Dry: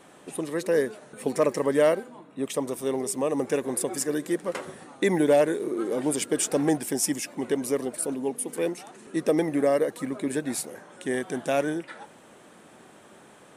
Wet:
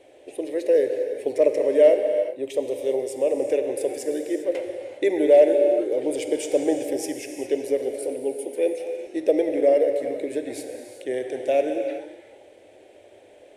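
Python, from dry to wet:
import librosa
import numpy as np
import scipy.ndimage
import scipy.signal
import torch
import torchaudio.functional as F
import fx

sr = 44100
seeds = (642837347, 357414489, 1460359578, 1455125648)

y = fx.curve_eq(x, sr, hz=(110.0, 170.0, 310.0, 590.0, 1200.0, 2200.0, 8000.0), db=(0, -26, -1, 7, -21, 0, -10))
y = fx.rev_gated(y, sr, seeds[0], gate_ms=430, shape='flat', drr_db=5.0)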